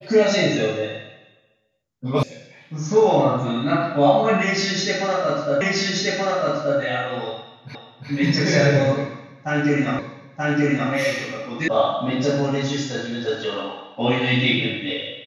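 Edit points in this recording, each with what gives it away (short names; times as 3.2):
2.23 sound cut off
5.61 repeat of the last 1.18 s
7.75 repeat of the last 0.35 s
9.99 repeat of the last 0.93 s
11.68 sound cut off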